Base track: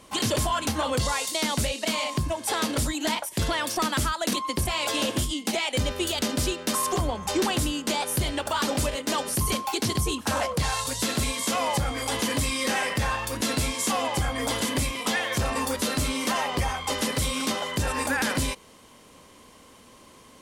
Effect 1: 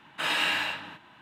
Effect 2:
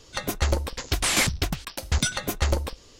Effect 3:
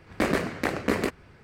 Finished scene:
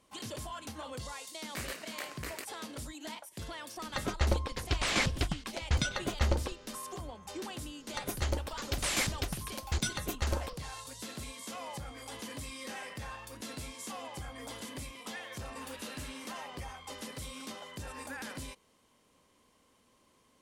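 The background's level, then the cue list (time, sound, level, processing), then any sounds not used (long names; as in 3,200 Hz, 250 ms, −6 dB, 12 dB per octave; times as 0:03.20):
base track −16.5 dB
0:01.35: mix in 3 −16.5 dB + spectral tilt +4.5 dB per octave
0:03.79: mix in 2 −5 dB + high-frequency loss of the air 91 metres
0:07.80: mix in 2 −9 dB
0:15.43: mix in 1 −9 dB + downward compressor 3 to 1, threshold −45 dBFS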